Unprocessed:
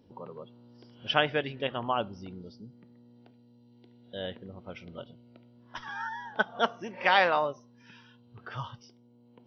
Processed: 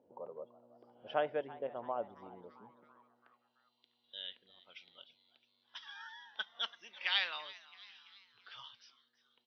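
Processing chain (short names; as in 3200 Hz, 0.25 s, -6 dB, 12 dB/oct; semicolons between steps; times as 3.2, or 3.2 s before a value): dynamic EQ 640 Hz, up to -5 dB, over -38 dBFS, Q 1.2; band-pass sweep 610 Hz -> 3600 Hz, 2.82–3.64; 1.42–2.16 air absorption 500 m; frequency-shifting echo 0.334 s, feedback 56%, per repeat +130 Hz, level -19 dB; gain +1 dB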